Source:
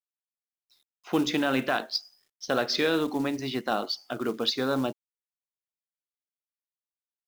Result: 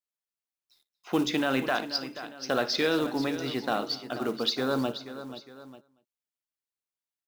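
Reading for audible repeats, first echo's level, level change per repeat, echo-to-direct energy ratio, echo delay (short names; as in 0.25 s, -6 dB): 5, -18.5 dB, no steady repeat, -10.5 dB, 58 ms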